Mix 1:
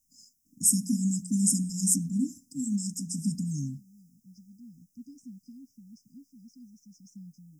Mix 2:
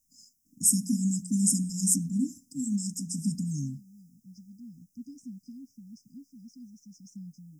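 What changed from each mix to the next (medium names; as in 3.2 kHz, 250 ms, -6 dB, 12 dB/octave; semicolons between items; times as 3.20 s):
second voice +3.0 dB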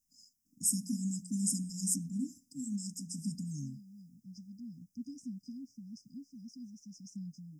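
first voice -8.0 dB; master: add peaking EQ 4.7 kHz +7.5 dB 0.27 oct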